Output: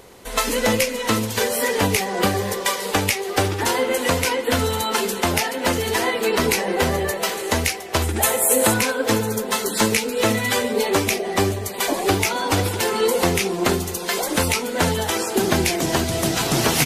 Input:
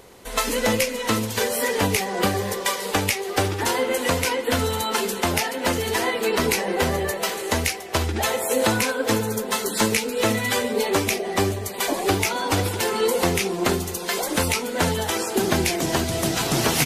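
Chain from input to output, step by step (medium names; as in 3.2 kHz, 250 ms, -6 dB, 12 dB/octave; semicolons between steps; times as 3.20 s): 8.02–8.74 s: resonant high shelf 6.9 kHz +8 dB, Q 1.5; trim +2 dB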